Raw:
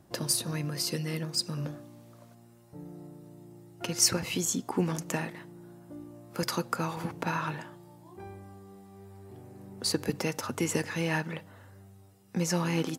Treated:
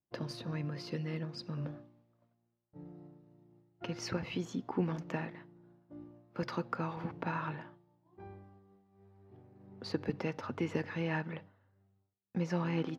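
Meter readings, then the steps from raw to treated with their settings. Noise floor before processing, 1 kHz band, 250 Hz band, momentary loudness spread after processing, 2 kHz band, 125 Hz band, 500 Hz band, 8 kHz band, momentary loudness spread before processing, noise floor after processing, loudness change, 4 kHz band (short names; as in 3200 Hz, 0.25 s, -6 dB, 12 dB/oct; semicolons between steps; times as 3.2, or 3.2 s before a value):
-56 dBFS, -5.5 dB, -4.5 dB, 18 LU, -6.5 dB, -4.5 dB, -5.0 dB, -25.0 dB, 21 LU, -80 dBFS, -7.5 dB, -14.5 dB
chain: expander -42 dBFS; air absorption 280 m; gain -4 dB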